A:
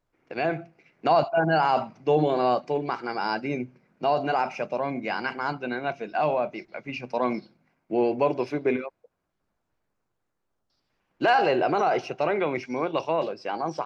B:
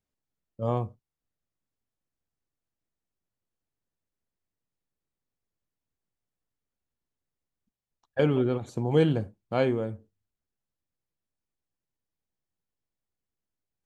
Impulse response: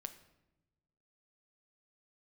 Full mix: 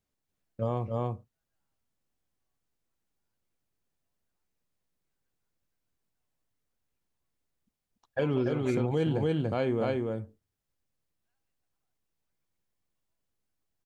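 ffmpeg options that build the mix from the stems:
-filter_complex "[0:a]highpass=1300,volume=-5.5dB[link_01];[1:a]volume=2.5dB,asplit=3[link_02][link_03][link_04];[link_03]volume=-3.5dB[link_05];[link_04]apad=whole_len=610895[link_06];[link_01][link_06]sidechaingate=range=-59dB:threshold=-43dB:ratio=16:detection=peak[link_07];[link_05]aecho=0:1:288:1[link_08];[link_07][link_02][link_08]amix=inputs=3:normalize=0,alimiter=limit=-18.5dB:level=0:latency=1:release=276"

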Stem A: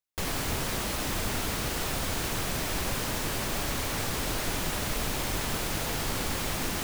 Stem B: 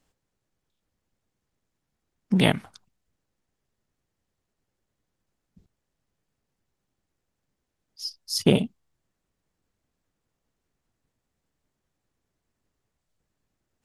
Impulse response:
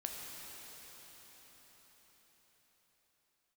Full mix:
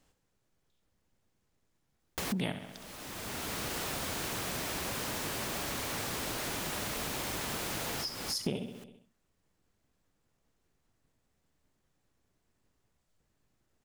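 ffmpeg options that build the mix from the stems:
-filter_complex "[0:a]highpass=frequency=140:poles=1,acontrast=82,adelay=2000,volume=-5.5dB[link_01];[1:a]volume=2dB,asplit=3[link_02][link_03][link_04];[link_03]volume=-12dB[link_05];[link_04]apad=whole_len=389770[link_06];[link_01][link_06]sidechaincompress=threshold=-35dB:ratio=12:attack=11:release=818[link_07];[link_05]aecho=0:1:66|132|198|264|330|396|462:1|0.48|0.23|0.111|0.0531|0.0255|0.0122[link_08];[link_07][link_02][link_08]amix=inputs=3:normalize=0,acompressor=threshold=-34dB:ratio=4"

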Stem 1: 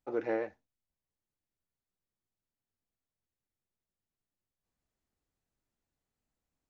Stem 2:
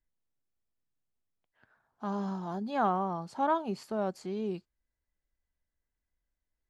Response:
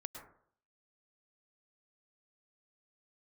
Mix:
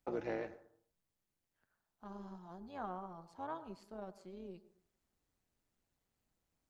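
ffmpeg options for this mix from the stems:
-filter_complex "[0:a]acrossover=split=170|3000[link_01][link_02][link_03];[link_02]acompressor=threshold=-40dB:ratio=6[link_04];[link_01][link_04][link_03]amix=inputs=3:normalize=0,volume=3dB,asplit=2[link_05][link_06];[link_06]volume=-6dB[link_07];[1:a]volume=-15dB,asplit=2[link_08][link_09];[link_09]volume=-6.5dB[link_10];[2:a]atrim=start_sample=2205[link_11];[link_07][link_10]amix=inputs=2:normalize=0[link_12];[link_12][link_11]afir=irnorm=-1:irlink=0[link_13];[link_05][link_08][link_13]amix=inputs=3:normalize=0,tremolo=f=180:d=0.571"

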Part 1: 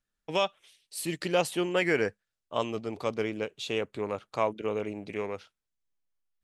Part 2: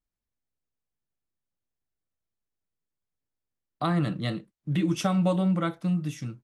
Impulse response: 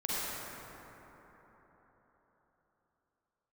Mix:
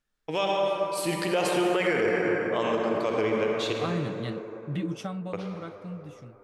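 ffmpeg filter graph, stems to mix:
-filter_complex "[0:a]bass=frequency=250:gain=-3,treble=frequency=4000:gain=1,asoftclip=type=hard:threshold=-14.5dB,volume=1dB,asplit=3[link_01][link_02][link_03];[link_01]atrim=end=3.73,asetpts=PTS-STARTPTS,afade=type=out:start_time=3.726:duration=0.004:curve=hsin[link_04];[link_02]atrim=start=3.73:end=5.33,asetpts=PTS-STARTPTS,volume=0[link_05];[link_03]atrim=start=5.33,asetpts=PTS-STARTPTS,afade=type=in:duration=0.004:curve=hsin[link_06];[link_04][link_05][link_06]concat=n=3:v=0:a=1,asplit=2[link_07][link_08];[link_08]volume=-3.5dB[link_09];[1:a]volume=-5dB,afade=type=out:start_time=4.8:duration=0.44:silence=0.421697[link_10];[2:a]atrim=start_sample=2205[link_11];[link_09][link_11]afir=irnorm=-1:irlink=0[link_12];[link_07][link_10][link_12]amix=inputs=3:normalize=0,highshelf=frequency=6200:gain=-7.5,alimiter=limit=-16dB:level=0:latency=1:release=48"

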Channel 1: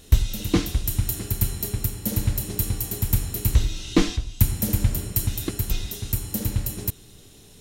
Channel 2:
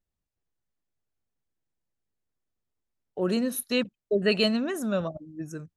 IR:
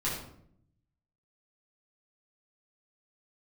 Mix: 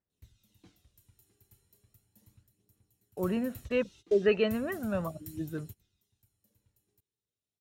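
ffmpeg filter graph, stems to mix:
-filter_complex "[0:a]adelay=100,volume=-17dB,afade=type=out:start_time=2.31:duration=0.21:silence=0.446684[link_01];[1:a]lowpass=frequency=2500:width=0.5412,lowpass=frequency=2500:width=1.3066,volume=-3.5dB,asplit=2[link_02][link_03];[link_03]apad=whole_len=339688[link_04];[link_01][link_04]sidechaingate=range=-21dB:threshold=-52dB:ratio=16:detection=peak[link_05];[link_05][link_02]amix=inputs=2:normalize=0,highpass=88,aphaser=in_gain=1:out_gain=1:delay=2.6:decay=0.39:speed=0.36:type=triangular"

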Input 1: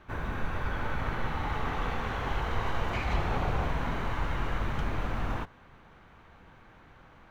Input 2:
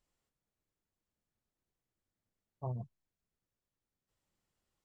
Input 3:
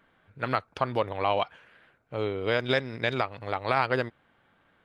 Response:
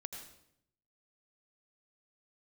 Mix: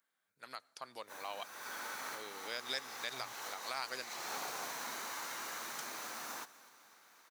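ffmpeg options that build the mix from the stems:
-filter_complex "[0:a]highpass=frequency=250:width=0.5412,highpass=frequency=250:width=1.3066,adelay=1000,volume=-4dB,asplit=2[link_01][link_02];[link_02]volume=-19dB[link_03];[1:a]bandpass=frequency=1300:width_type=q:width=0.55:csg=0,adelay=500,volume=-5dB[link_04];[2:a]highpass=frequency=190:width=0.5412,highpass=frequency=190:width=1.3066,dynaudnorm=framelen=360:gausssize=5:maxgain=6dB,volume=-18dB,asplit=3[link_05][link_06][link_07];[link_06]volume=-17.5dB[link_08];[link_07]apad=whole_len=366123[link_09];[link_01][link_09]sidechaincompress=threshold=-47dB:ratio=3:attack=30:release=317[link_10];[3:a]atrim=start_sample=2205[link_11];[link_08][link_11]afir=irnorm=-1:irlink=0[link_12];[link_03]aecho=0:1:253|506|759|1012|1265|1518|1771|2024:1|0.56|0.314|0.176|0.0983|0.0551|0.0308|0.0173[link_13];[link_10][link_04][link_05][link_12][link_13]amix=inputs=5:normalize=0,aexciter=amount=4.5:drive=8.8:freq=4400,equalizer=frequency=280:width_type=o:width=3:gain=-12"

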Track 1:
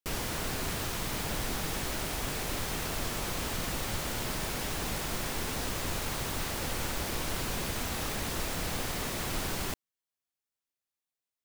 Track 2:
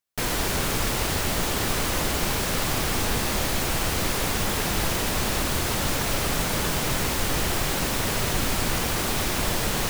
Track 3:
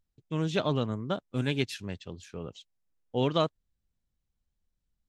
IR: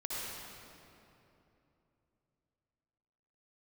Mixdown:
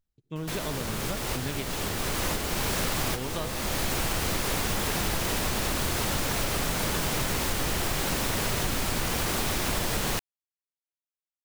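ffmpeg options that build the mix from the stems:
-filter_complex "[0:a]adelay=300,volume=-17dB[link_01];[1:a]adelay=300,volume=1.5dB[link_02];[2:a]acompressor=threshold=-27dB:ratio=6,volume=-4.5dB,asplit=3[link_03][link_04][link_05];[link_04]volume=-9.5dB[link_06];[link_05]apad=whole_len=449465[link_07];[link_02][link_07]sidechaincompress=threshold=-43dB:ratio=5:attack=23:release=523[link_08];[3:a]atrim=start_sample=2205[link_09];[link_06][link_09]afir=irnorm=-1:irlink=0[link_10];[link_01][link_08][link_03][link_10]amix=inputs=4:normalize=0,acompressor=threshold=-24dB:ratio=6"

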